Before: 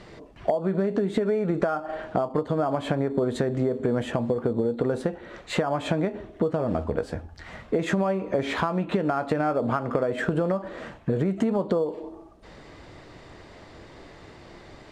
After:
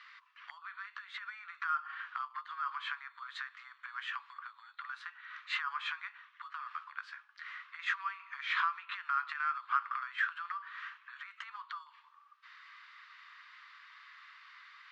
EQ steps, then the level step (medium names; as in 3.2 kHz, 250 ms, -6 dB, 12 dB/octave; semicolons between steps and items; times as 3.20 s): steep high-pass 1.1 kHz 72 dB/octave; distance through air 250 m; +1.5 dB